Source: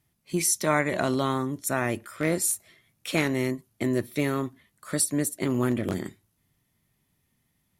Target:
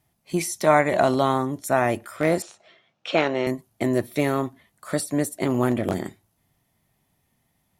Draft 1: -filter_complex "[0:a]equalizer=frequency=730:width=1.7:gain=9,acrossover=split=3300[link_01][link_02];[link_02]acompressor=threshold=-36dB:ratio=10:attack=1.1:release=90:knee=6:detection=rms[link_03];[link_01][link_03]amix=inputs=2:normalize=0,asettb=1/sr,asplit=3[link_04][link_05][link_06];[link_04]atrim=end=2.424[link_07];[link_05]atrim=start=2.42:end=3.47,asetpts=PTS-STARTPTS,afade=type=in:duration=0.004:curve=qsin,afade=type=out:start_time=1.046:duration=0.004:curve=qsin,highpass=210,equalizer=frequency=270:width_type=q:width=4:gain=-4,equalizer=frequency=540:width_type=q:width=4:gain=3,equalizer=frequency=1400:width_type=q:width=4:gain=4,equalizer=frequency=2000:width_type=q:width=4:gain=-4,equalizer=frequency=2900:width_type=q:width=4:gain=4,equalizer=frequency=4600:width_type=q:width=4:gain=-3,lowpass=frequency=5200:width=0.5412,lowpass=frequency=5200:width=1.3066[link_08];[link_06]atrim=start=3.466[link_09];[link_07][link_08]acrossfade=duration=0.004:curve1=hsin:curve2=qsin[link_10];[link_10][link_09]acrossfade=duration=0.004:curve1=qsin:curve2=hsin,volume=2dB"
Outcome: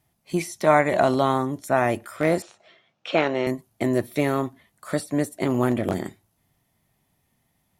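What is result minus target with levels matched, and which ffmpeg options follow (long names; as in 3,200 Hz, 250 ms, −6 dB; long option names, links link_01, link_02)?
downward compressor: peak gain reduction +8 dB
-filter_complex "[0:a]equalizer=frequency=730:width=1.7:gain=9,acrossover=split=3300[link_01][link_02];[link_02]acompressor=threshold=-27dB:ratio=10:attack=1.1:release=90:knee=6:detection=rms[link_03];[link_01][link_03]amix=inputs=2:normalize=0,asettb=1/sr,asplit=3[link_04][link_05][link_06];[link_04]atrim=end=2.424[link_07];[link_05]atrim=start=2.42:end=3.47,asetpts=PTS-STARTPTS,afade=type=in:duration=0.004:curve=qsin,afade=type=out:start_time=1.046:duration=0.004:curve=qsin,highpass=210,equalizer=frequency=270:width_type=q:width=4:gain=-4,equalizer=frequency=540:width_type=q:width=4:gain=3,equalizer=frequency=1400:width_type=q:width=4:gain=4,equalizer=frequency=2000:width_type=q:width=4:gain=-4,equalizer=frequency=2900:width_type=q:width=4:gain=4,equalizer=frequency=4600:width_type=q:width=4:gain=-3,lowpass=frequency=5200:width=0.5412,lowpass=frequency=5200:width=1.3066[link_08];[link_06]atrim=start=3.466[link_09];[link_07][link_08]acrossfade=duration=0.004:curve1=hsin:curve2=qsin[link_10];[link_10][link_09]acrossfade=duration=0.004:curve1=qsin:curve2=hsin,volume=2dB"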